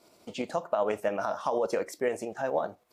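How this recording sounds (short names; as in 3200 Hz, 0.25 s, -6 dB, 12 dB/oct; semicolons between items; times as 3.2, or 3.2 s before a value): tremolo saw up 12 Hz, depth 45%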